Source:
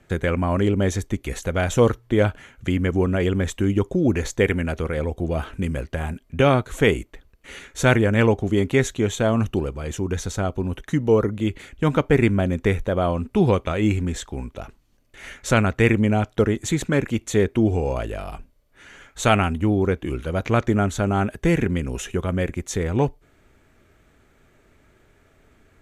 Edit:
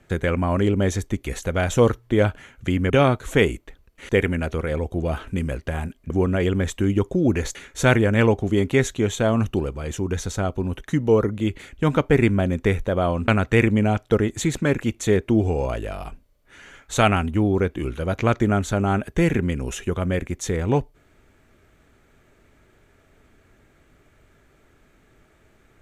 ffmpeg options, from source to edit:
-filter_complex "[0:a]asplit=6[s0][s1][s2][s3][s4][s5];[s0]atrim=end=2.902[s6];[s1]atrim=start=6.358:end=7.552[s7];[s2]atrim=start=4.348:end=6.362[s8];[s3]atrim=start=2.898:end=4.352[s9];[s4]atrim=start=7.548:end=13.282[s10];[s5]atrim=start=15.548[s11];[s6][s7]acrossfade=d=0.004:c1=hsin:c2=hsin[s12];[s12][s8]acrossfade=d=0.004:c1=hsin:c2=hsin[s13];[s13][s9]acrossfade=d=0.004:c1=hsin:c2=hsin[s14];[s14][s10]acrossfade=d=0.004:c1=hsin:c2=hsin[s15];[s15][s11]acrossfade=d=0.004:c1=hsin:c2=hsin"

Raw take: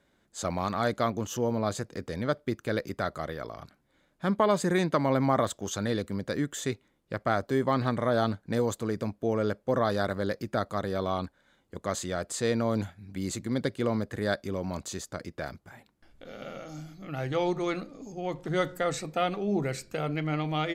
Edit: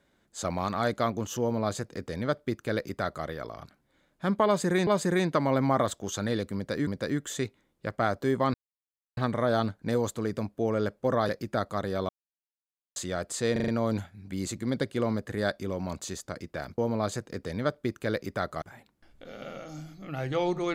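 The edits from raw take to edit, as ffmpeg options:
-filter_complex "[0:a]asplit=13[s0][s1][s2][s3][s4][s5][s6][s7][s8][s9][s10][s11][s12];[s0]atrim=end=4.872[s13];[s1]atrim=start=4.458:end=6.462[s14];[s2]atrim=start=6.138:end=7.81,asetpts=PTS-STARTPTS,afade=t=out:st=1.668:d=0.004:c=hsin,apad=pad_dur=0.63[s15];[s3]atrim=start=7.81:end=9.932,asetpts=PTS-STARTPTS,afade=t=in:d=0.004:c=hsin[s16];[s4]atrim=start=10.288:end=11.09,asetpts=PTS-STARTPTS,afade=t=out:st=0.798:d=0.004:c=hsin[s17];[s5]atrim=start=11.09:end=11.96,asetpts=PTS-STARTPTS,volume=0[s18];[s6]atrim=start=11.96:end=12.562,asetpts=PTS-STARTPTS,afade=t=in:d=0.004:c=hsin[s19];[s7]atrim=start=12.518:end=12.562[s20];[s8]atrim=start=12.518:end=12.562[s21];[s9]atrim=start=12.518:end=12.562[s22];[s10]atrim=start=12.518:end=15.622[s23];[s11]atrim=start=1.408:end=3.252[s24];[s12]atrim=start=15.618[s25];[s13][s14]acrossfade=d=0.004:c1=hsin:c2=hsin[s26];[s15][s16]concat=n=2:v=0:a=1[s27];[s26][s27]acrossfade=d=0.004:c1=hsin:c2=hsin[s28];[s17][s18][s19]concat=n=3:v=0:a=1[s29];[s28][s29]acrossfade=d=0.004:c1=hsin:c2=hsin[s30];[s30][s20]acrossfade=d=0.004:c1=hsin:c2=hsin[s31];[s31][s21]acrossfade=d=0.004:c1=hsin:c2=hsin[s32];[s32][s22]acrossfade=d=0.004:c1=hsin:c2=hsin[s33];[s33][s23]acrossfade=d=0.004:c1=hsin:c2=hsin[s34];[s34][s24]acrossfade=d=0.004:c1=hsin:c2=hsin[s35];[s35][s25]acrossfade=d=0.004:c1=hsin:c2=hsin"

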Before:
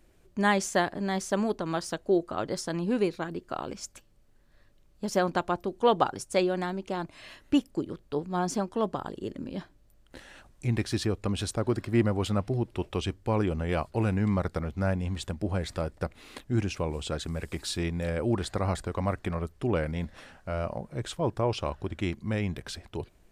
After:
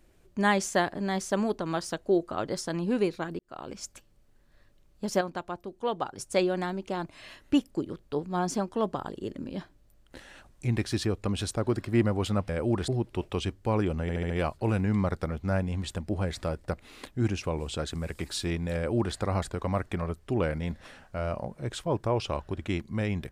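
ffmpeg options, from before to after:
-filter_complex "[0:a]asplit=10[s0][s1][s2][s3][s4][s5][s6][s7][s8][s9];[s0]atrim=end=3.39,asetpts=PTS-STARTPTS,afade=t=out:st=3.386:d=0.004:c=hsin[s10];[s1]atrim=start=3.39:end=5.212,asetpts=PTS-STARTPTS,afade=t=in:d=0.43[s11];[s2]atrim=start=5.208:end=6.182,asetpts=PTS-STARTPTS,volume=0.422[s12];[s3]atrim=start=6.178:end=12.492[s13];[s4]atrim=start=18.088:end=18.482[s14];[s5]atrim=start=12.488:end=13.702[s15];[s6]atrim=start=13.628:end=13.702[s16];[s7]atrim=start=13.628:end=13.702[s17];[s8]atrim=start=13.628:end=13.702[s18];[s9]atrim=start=13.628[s19];[s10][s11]concat=n=2:v=0:a=1[s20];[s20][s12]acrossfade=d=0.004:c1=hsin:c2=hsin[s21];[s21][s13]acrossfade=d=0.004:c1=hsin:c2=hsin[s22];[s22][s14]acrossfade=d=0.004:c1=hsin:c2=hsin[s23];[s23][s15]acrossfade=d=0.004:c1=hsin:c2=hsin[s24];[s24][s16]acrossfade=d=0.004:c1=hsin:c2=hsin[s25];[s25][s17]acrossfade=d=0.004:c1=hsin:c2=hsin[s26];[s26][s18]acrossfade=d=0.004:c1=hsin:c2=hsin[s27];[s27][s19]acrossfade=d=0.004:c1=hsin:c2=hsin"

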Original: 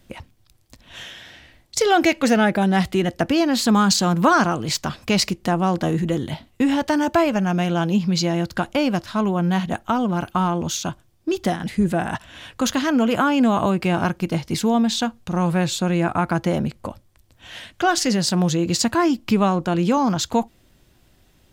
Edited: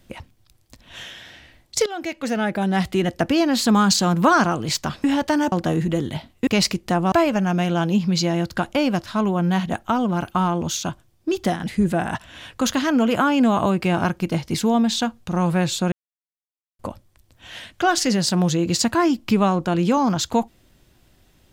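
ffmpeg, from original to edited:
-filter_complex "[0:a]asplit=8[s0][s1][s2][s3][s4][s5][s6][s7];[s0]atrim=end=1.86,asetpts=PTS-STARTPTS,afade=t=out:st=1.856:d=0.004:c=hsin:silence=0.125893[s8];[s1]atrim=start=1.86:end=5.042,asetpts=PTS-STARTPTS,afade=t=in:d=1.2:silence=0.125893[s9];[s2]atrim=start=6.638:end=7.122[s10];[s3]atrim=start=5.688:end=6.642[s11];[s4]atrim=start=5.038:end=5.692[s12];[s5]atrim=start=7.118:end=15.92,asetpts=PTS-STARTPTS,afade=t=out:st=8.798:d=0.004:c=hsin[s13];[s6]atrim=start=15.92:end=16.79,asetpts=PTS-STARTPTS,volume=0[s14];[s7]atrim=start=16.79,asetpts=PTS-STARTPTS,afade=t=in:d=0.004:c=hsin[s15];[s8][s9]concat=n=2:v=0:a=1[s16];[s16][s10]acrossfade=d=0.004:c1=hsin:c2=hsin[s17];[s17][s11]acrossfade=d=0.004:c1=hsin:c2=hsin[s18];[s18][s12]acrossfade=d=0.004:c1=hsin:c2=hsin[s19];[s13][s14][s15]concat=n=3:v=0:a=1[s20];[s19][s20]acrossfade=d=0.004:c1=hsin:c2=hsin"

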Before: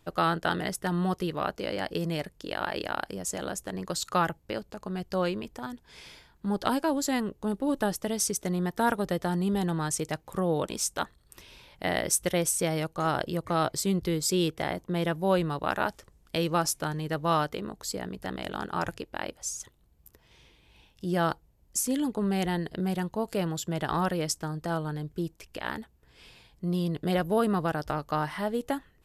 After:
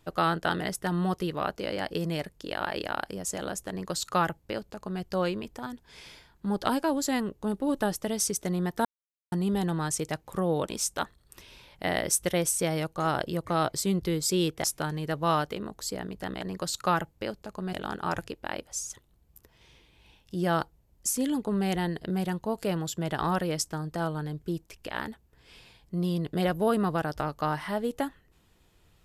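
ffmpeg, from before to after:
-filter_complex "[0:a]asplit=6[s0][s1][s2][s3][s4][s5];[s0]atrim=end=8.85,asetpts=PTS-STARTPTS,afade=t=out:st=8.846:d=0.004:c=hsin[s6];[s1]atrim=start=8.85:end=9.32,asetpts=PTS-STARTPTS,volume=0[s7];[s2]atrim=start=9.32:end=14.642,asetpts=PTS-STARTPTS,afade=t=in:d=0.004:c=hsin[s8];[s3]atrim=start=16.658:end=18.432[s9];[s4]atrim=start=3.688:end=5.012[s10];[s5]atrim=start=18.428[s11];[s6][s7][s8]concat=n=3:v=0:a=1[s12];[s12][s9]acrossfade=d=0.004:c1=hsin:c2=hsin[s13];[s13][s10]acrossfade=d=0.004:c1=hsin:c2=hsin[s14];[s14][s11]acrossfade=d=0.004:c1=hsin:c2=hsin"

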